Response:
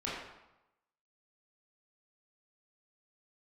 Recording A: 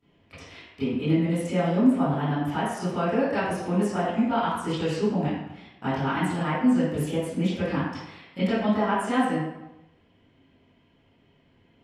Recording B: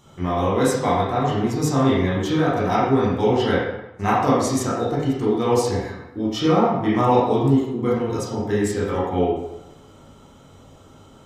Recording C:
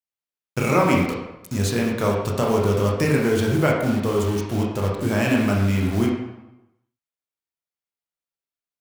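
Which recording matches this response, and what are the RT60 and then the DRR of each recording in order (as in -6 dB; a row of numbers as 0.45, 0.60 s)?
B; 0.95, 0.95, 0.95 s; -18.0, -8.0, -2.0 dB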